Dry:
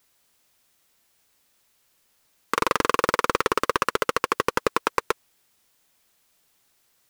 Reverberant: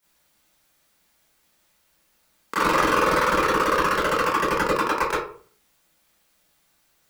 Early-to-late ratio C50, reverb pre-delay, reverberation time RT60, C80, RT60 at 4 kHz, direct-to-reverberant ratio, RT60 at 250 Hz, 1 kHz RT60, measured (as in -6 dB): 2.0 dB, 22 ms, 0.45 s, 7.5 dB, 0.30 s, -12.5 dB, 0.55 s, 0.45 s